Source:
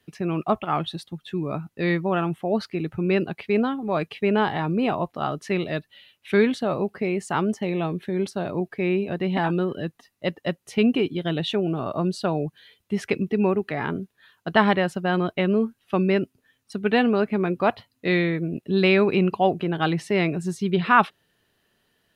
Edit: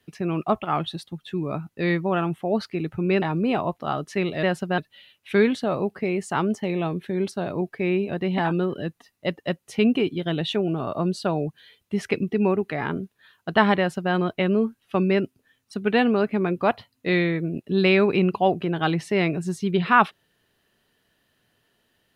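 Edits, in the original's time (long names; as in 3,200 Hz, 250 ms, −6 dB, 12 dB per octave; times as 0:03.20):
0:03.22–0:04.56: remove
0:14.77–0:15.12: duplicate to 0:05.77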